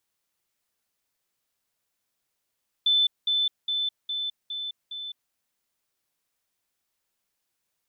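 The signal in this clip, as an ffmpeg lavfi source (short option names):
-f lavfi -i "aevalsrc='pow(10,(-18-3*floor(t/0.41))/20)*sin(2*PI*3520*t)*clip(min(mod(t,0.41),0.21-mod(t,0.41))/0.005,0,1)':d=2.46:s=44100"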